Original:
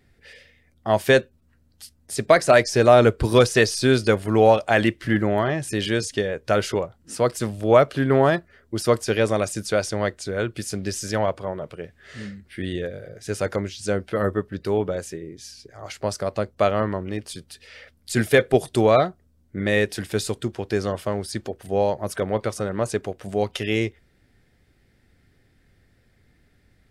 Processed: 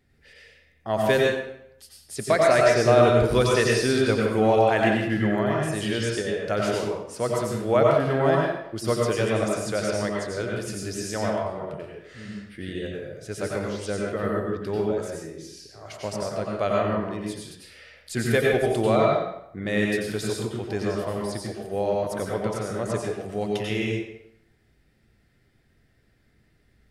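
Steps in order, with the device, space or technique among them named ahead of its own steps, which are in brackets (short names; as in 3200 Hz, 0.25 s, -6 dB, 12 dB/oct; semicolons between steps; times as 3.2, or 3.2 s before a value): bathroom (reverb RT60 0.75 s, pre-delay 85 ms, DRR -2.5 dB); gain -6.5 dB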